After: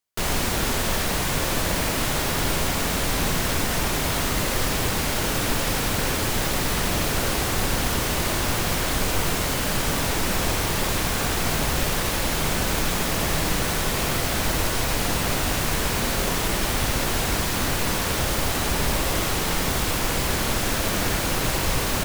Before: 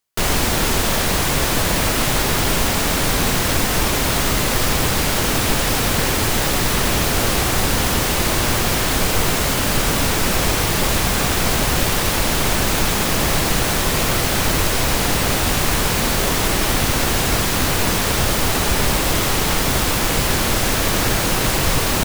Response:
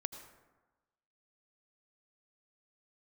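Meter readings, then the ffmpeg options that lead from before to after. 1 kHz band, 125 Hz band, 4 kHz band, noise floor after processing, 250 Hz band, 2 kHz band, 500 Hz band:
−5.5 dB, −5.5 dB, −6.0 dB, −25 dBFS, −5.5 dB, −5.5 dB, −5.5 dB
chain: -filter_complex "[1:a]atrim=start_sample=2205,asetrate=74970,aresample=44100[link_01];[0:a][link_01]afir=irnorm=-1:irlink=0"

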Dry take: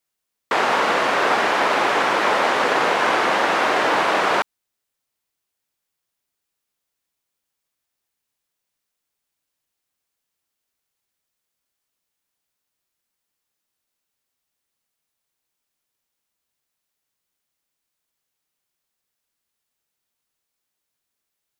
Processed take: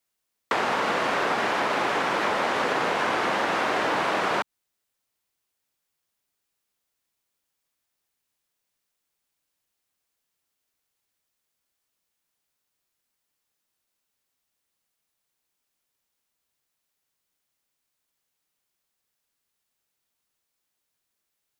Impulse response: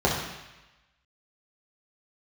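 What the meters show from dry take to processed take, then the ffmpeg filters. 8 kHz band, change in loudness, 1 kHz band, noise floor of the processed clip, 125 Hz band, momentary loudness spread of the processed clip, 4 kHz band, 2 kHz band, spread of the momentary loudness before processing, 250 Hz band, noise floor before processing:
−6.5 dB, −6.0 dB, −6.5 dB, −81 dBFS, −1.0 dB, 2 LU, −6.5 dB, −6.5 dB, 3 LU, −3.5 dB, −81 dBFS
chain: -filter_complex "[0:a]acrossover=split=240[link_01][link_02];[link_02]acompressor=threshold=-22dB:ratio=6[link_03];[link_01][link_03]amix=inputs=2:normalize=0"

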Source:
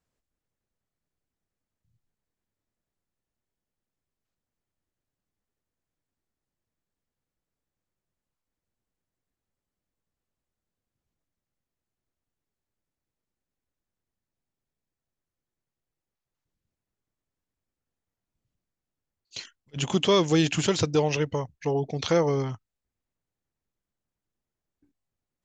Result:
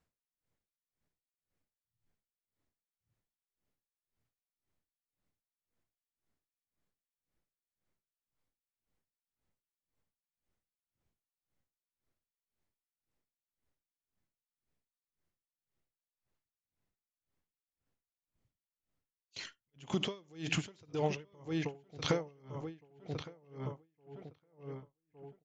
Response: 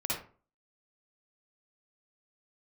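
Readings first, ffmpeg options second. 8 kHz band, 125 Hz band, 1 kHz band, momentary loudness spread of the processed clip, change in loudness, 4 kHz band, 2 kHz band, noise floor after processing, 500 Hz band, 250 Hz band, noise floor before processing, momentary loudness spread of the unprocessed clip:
−14.0 dB, −11.0 dB, −12.0 dB, 18 LU, −14.5 dB, −11.0 dB, −8.5 dB, below −85 dBFS, −14.0 dB, −12.0 dB, below −85 dBFS, 19 LU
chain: -filter_complex "[0:a]highshelf=frequency=5900:gain=-7.5,asplit=2[link_01][link_02];[1:a]atrim=start_sample=2205,atrim=end_sample=4410[link_03];[link_02][link_03]afir=irnorm=-1:irlink=0,volume=-22.5dB[link_04];[link_01][link_04]amix=inputs=2:normalize=0,alimiter=limit=-15dB:level=0:latency=1:release=67,equalizer=frequency=2100:width=7.5:gain=3,asplit=2[link_05][link_06];[link_06]adelay=1161,lowpass=frequency=2900:poles=1,volume=-9.5dB,asplit=2[link_07][link_08];[link_08]adelay=1161,lowpass=frequency=2900:poles=1,volume=0.37,asplit=2[link_09][link_10];[link_10]adelay=1161,lowpass=frequency=2900:poles=1,volume=0.37,asplit=2[link_11][link_12];[link_12]adelay=1161,lowpass=frequency=2900:poles=1,volume=0.37[link_13];[link_05][link_07][link_09][link_11][link_13]amix=inputs=5:normalize=0,acompressor=threshold=-28dB:ratio=6,aeval=exprs='val(0)*pow(10,-33*(0.5-0.5*cos(2*PI*1.9*n/s))/20)':channel_layout=same,volume=2dB"

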